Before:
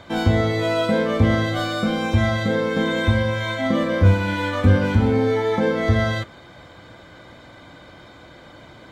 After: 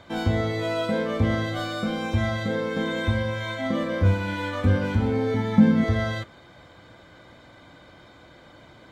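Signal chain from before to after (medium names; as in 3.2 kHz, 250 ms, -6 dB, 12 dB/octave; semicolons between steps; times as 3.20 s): 5.34–5.84 s: resonant low shelf 290 Hz +9 dB, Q 3; trim -5.5 dB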